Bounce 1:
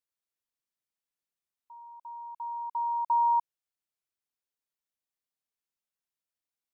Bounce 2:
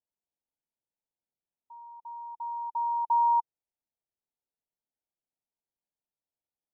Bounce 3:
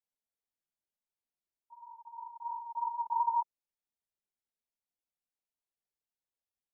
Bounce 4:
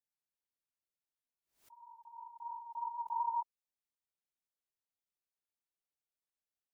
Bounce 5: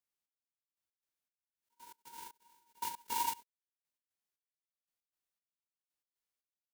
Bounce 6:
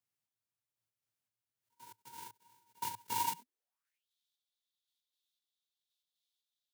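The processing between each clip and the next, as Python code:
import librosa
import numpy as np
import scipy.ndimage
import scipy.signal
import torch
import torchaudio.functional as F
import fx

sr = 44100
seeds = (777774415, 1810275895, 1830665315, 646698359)

y1 = scipy.signal.sosfilt(scipy.signal.cheby1(6, 1.0, 940.0, 'lowpass', fs=sr, output='sos'), x)
y1 = y1 * 10.0 ** (2.0 / 20.0)
y2 = fx.chorus_voices(y1, sr, voices=4, hz=1.5, base_ms=22, depth_ms=3.0, mix_pct=65)
y2 = y2 * 10.0 ** (-2.5 / 20.0)
y3 = fx.pre_swell(y2, sr, db_per_s=140.0)
y3 = y3 * 10.0 ** (-5.5 / 20.0)
y4 = fx.envelope_flatten(y3, sr, power=0.1)
y4 = fx.step_gate(y4, sr, bpm=117, pattern='xx....x.', floor_db=-24.0, edge_ms=4.5)
y4 = y4 * 10.0 ** (1.0 / 20.0)
y5 = fx.filter_sweep_highpass(y4, sr, from_hz=110.0, to_hz=3600.0, start_s=3.25, end_s=4.07, q=6.6)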